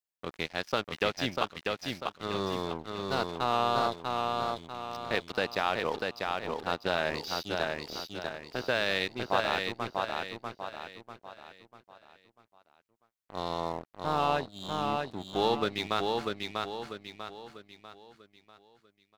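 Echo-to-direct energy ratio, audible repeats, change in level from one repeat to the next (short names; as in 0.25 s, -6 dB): -2.5 dB, 5, -7.5 dB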